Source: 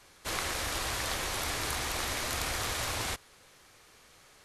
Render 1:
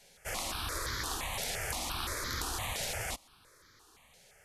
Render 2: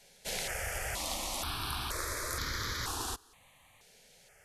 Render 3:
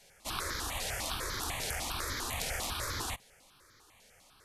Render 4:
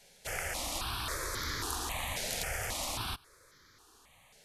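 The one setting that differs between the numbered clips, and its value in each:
step-sequenced phaser, speed: 5.8, 2.1, 10, 3.7 Hertz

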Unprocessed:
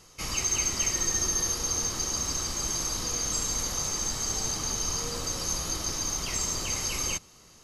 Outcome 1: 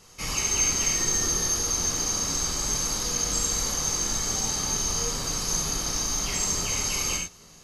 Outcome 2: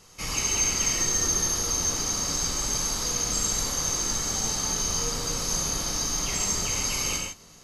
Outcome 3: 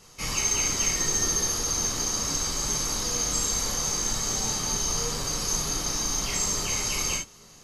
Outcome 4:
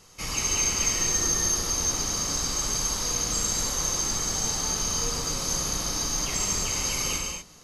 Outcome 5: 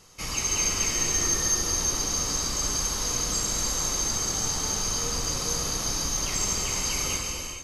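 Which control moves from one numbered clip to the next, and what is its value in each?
reverb whose tail is shaped and stops, gate: 120, 180, 80, 270, 480 milliseconds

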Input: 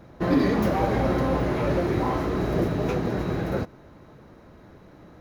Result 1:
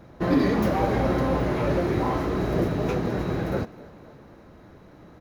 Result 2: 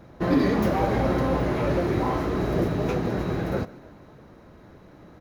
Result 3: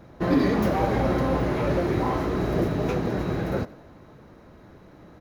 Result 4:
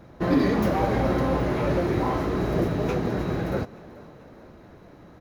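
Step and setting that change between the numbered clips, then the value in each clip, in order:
echo with shifted repeats, delay time: 259, 150, 89, 437 milliseconds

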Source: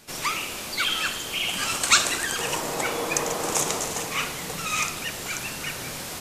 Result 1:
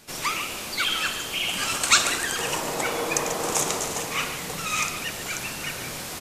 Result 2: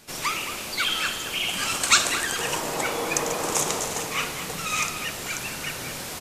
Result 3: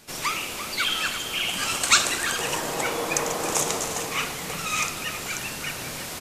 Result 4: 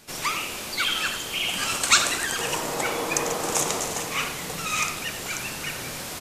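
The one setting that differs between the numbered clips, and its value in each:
far-end echo of a speakerphone, delay time: 140, 220, 340, 90 milliseconds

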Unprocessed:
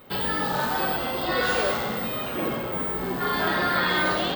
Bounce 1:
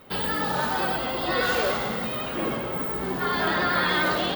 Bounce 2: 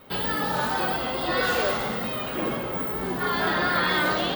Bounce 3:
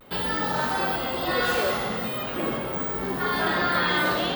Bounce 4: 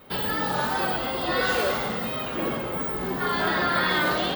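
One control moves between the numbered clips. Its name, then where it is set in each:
pitch vibrato, speed: 10, 4.4, 0.42, 2.9 Hertz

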